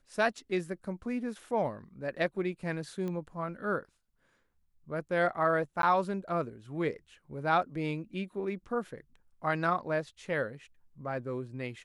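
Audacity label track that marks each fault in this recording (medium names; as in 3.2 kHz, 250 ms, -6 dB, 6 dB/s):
3.080000	3.080000	pop -26 dBFS
5.820000	5.830000	dropout 12 ms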